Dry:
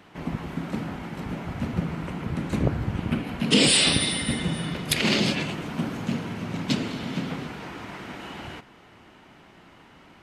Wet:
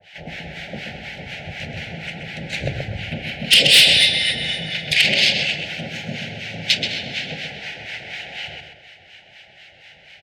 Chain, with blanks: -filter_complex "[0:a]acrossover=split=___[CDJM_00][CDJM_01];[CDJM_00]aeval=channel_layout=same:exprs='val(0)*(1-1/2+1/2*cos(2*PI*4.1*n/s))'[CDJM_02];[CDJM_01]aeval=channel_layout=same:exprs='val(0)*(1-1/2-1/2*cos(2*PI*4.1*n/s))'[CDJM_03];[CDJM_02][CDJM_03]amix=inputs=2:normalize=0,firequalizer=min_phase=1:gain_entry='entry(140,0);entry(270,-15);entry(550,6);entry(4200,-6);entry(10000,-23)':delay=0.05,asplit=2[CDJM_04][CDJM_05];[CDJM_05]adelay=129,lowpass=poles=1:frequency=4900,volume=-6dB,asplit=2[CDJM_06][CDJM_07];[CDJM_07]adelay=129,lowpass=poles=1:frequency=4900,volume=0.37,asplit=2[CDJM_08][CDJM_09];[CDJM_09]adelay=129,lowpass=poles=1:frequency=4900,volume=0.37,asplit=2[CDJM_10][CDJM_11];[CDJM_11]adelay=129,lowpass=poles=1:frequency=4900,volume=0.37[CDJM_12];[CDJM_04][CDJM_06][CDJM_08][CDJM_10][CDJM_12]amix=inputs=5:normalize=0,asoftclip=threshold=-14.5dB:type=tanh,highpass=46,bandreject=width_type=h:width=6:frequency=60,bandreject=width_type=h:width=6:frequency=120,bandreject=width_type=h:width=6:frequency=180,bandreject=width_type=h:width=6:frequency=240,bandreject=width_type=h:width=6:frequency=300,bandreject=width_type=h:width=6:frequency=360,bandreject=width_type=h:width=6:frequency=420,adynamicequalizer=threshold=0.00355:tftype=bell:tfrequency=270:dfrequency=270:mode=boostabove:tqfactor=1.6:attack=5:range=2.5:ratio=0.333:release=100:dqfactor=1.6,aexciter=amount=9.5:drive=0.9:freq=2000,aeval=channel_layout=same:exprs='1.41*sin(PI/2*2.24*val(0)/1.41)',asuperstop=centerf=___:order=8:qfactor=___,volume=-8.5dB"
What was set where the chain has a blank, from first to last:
830, 1100, 1.9